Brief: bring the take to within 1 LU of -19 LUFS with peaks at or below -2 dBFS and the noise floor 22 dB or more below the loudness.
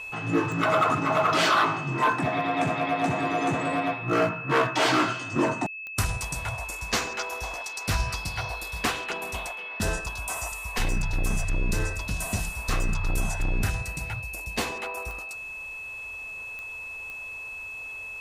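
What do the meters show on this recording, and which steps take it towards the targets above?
clicks 6; steady tone 2600 Hz; tone level -35 dBFS; loudness -27.5 LUFS; peak -11.0 dBFS; loudness target -19.0 LUFS
-> de-click; notch 2600 Hz, Q 30; gain +8.5 dB

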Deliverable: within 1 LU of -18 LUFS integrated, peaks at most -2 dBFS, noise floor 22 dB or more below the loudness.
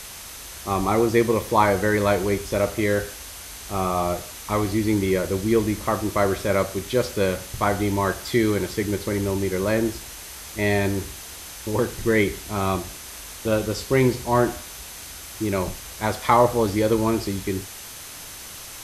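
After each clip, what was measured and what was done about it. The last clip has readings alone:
steady tone 6200 Hz; tone level -48 dBFS; noise floor -39 dBFS; noise floor target -45 dBFS; loudness -23.0 LUFS; peak -3.0 dBFS; loudness target -18.0 LUFS
-> notch 6200 Hz, Q 30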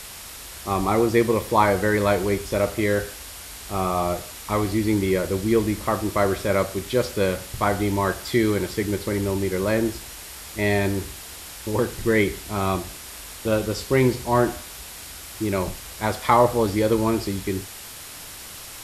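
steady tone none; noise floor -39 dBFS; noise floor target -45 dBFS
-> denoiser 6 dB, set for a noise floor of -39 dBFS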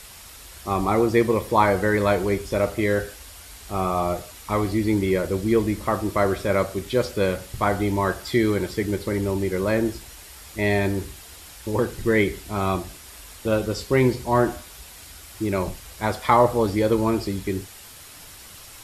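noise floor -44 dBFS; noise floor target -45 dBFS
-> denoiser 6 dB, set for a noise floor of -44 dBFS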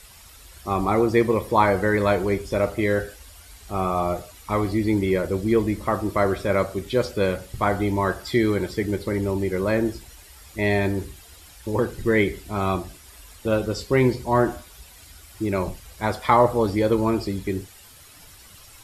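noise floor -48 dBFS; loudness -23.5 LUFS; peak -3.0 dBFS; loudness target -18.0 LUFS
-> gain +5.5 dB; limiter -2 dBFS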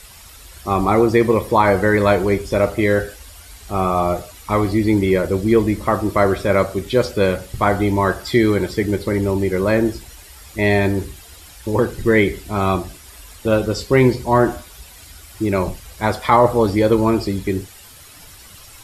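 loudness -18.0 LUFS; peak -2.0 dBFS; noise floor -42 dBFS

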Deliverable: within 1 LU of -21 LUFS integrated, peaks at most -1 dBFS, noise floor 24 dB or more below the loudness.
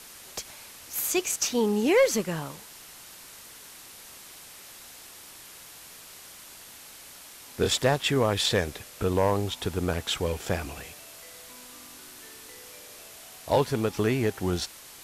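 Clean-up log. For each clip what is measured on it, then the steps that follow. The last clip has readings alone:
noise floor -47 dBFS; noise floor target -51 dBFS; loudness -26.5 LUFS; peak -12.5 dBFS; loudness target -21.0 LUFS
-> noise print and reduce 6 dB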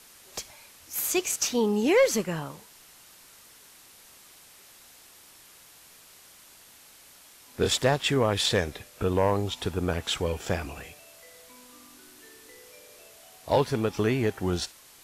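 noise floor -53 dBFS; loudness -26.5 LUFS; peak -12.5 dBFS; loudness target -21.0 LUFS
-> gain +5.5 dB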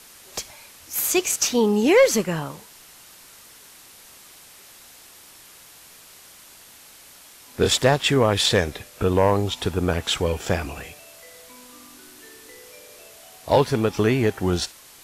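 loudness -21.0 LUFS; peak -7.0 dBFS; noise floor -48 dBFS

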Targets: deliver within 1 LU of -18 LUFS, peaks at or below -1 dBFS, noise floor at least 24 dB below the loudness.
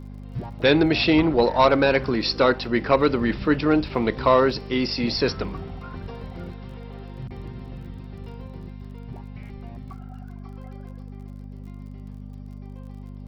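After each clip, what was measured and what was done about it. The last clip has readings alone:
ticks 35/s; hum 50 Hz; harmonics up to 250 Hz; hum level -35 dBFS; loudness -21.0 LUFS; peak -6.5 dBFS; loudness target -18.0 LUFS
-> de-click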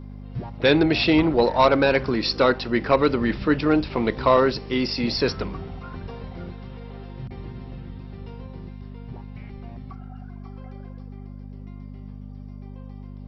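ticks 0/s; hum 50 Hz; harmonics up to 250 Hz; hum level -35 dBFS
-> de-hum 50 Hz, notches 5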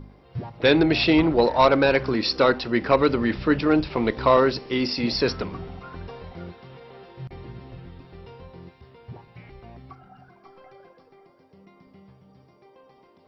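hum none; loudness -21.0 LUFS; peak -6.5 dBFS; loudness target -18.0 LUFS
-> gain +3 dB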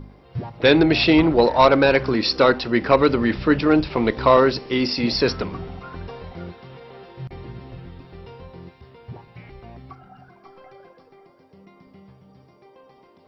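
loudness -18.0 LUFS; peak -3.5 dBFS; noise floor -53 dBFS

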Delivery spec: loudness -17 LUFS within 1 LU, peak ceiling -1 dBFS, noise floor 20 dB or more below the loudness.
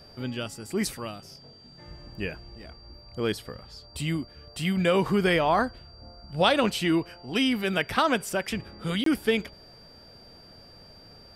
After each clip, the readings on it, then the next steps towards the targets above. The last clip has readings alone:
dropouts 1; longest dropout 23 ms; steady tone 4700 Hz; tone level -51 dBFS; loudness -27.0 LUFS; peak -7.5 dBFS; loudness target -17.0 LUFS
-> interpolate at 9.04, 23 ms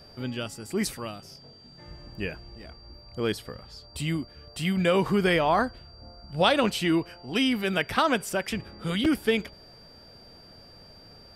dropouts 0; steady tone 4700 Hz; tone level -51 dBFS
-> notch 4700 Hz, Q 30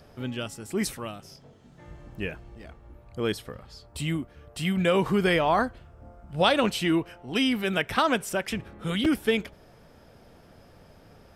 steady tone none; loudness -27.0 LUFS; peak -7.5 dBFS; loudness target -17.0 LUFS
-> gain +10 dB; limiter -1 dBFS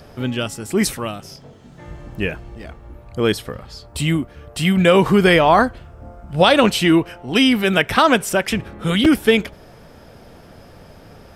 loudness -17.0 LUFS; peak -1.0 dBFS; noise floor -44 dBFS

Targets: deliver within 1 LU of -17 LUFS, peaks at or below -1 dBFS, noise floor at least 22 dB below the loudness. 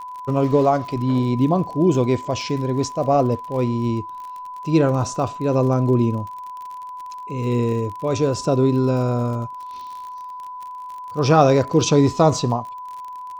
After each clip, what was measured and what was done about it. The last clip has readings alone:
ticks 46/s; steady tone 1000 Hz; tone level -31 dBFS; loudness -20.0 LUFS; peak -1.5 dBFS; loudness target -17.0 LUFS
-> de-click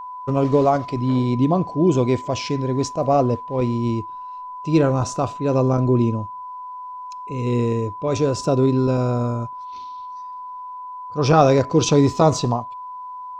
ticks 0.22/s; steady tone 1000 Hz; tone level -31 dBFS
-> notch 1000 Hz, Q 30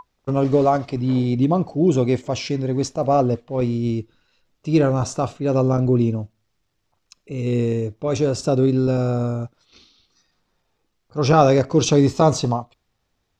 steady tone none; loudness -20.0 LUFS; peak -2.0 dBFS; loudness target -17.0 LUFS
-> gain +3 dB; limiter -1 dBFS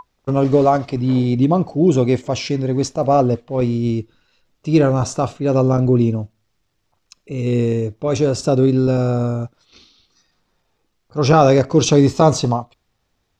loudness -17.0 LUFS; peak -1.0 dBFS; noise floor -69 dBFS

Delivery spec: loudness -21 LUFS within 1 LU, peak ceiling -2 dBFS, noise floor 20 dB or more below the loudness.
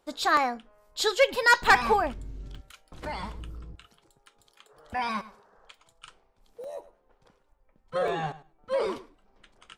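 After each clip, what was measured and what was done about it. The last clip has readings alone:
dropouts 5; longest dropout 2.0 ms; loudness -26.0 LUFS; peak -8.5 dBFS; loudness target -21.0 LUFS
-> interpolate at 0.37/1.64/2.55/6.64/8.08, 2 ms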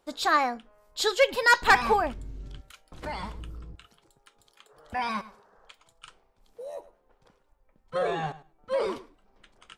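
dropouts 0; loudness -26.0 LUFS; peak -8.5 dBFS; loudness target -21.0 LUFS
-> gain +5 dB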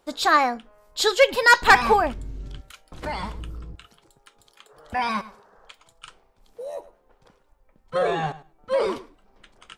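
loudness -21.0 LUFS; peak -3.5 dBFS; noise floor -63 dBFS

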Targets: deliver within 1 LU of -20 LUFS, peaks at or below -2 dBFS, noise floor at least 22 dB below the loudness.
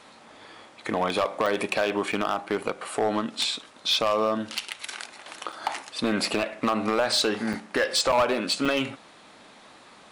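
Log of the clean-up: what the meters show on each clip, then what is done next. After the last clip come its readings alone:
clipped 1.1%; flat tops at -16.5 dBFS; dropouts 6; longest dropout 5.6 ms; loudness -26.0 LUFS; peak -16.5 dBFS; loudness target -20.0 LUFS
-> clip repair -16.5 dBFS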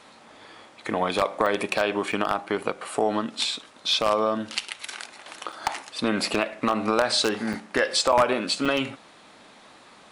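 clipped 0.0%; dropouts 6; longest dropout 5.6 ms
-> interpolate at 1.46/2.12/5.52/7.53/8.12/8.65, 5.6 ms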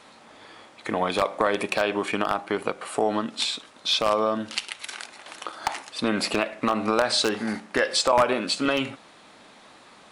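dropouts 0; loudness -25.0 LUFS; peak -7.5 dBFS; loudness target -20.0 LUFS
-> gain +5 dB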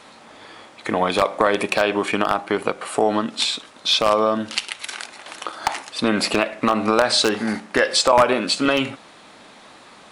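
loudness -20.0 LUFS; peak -2.5 dBFS; noise floor -46 dBFS

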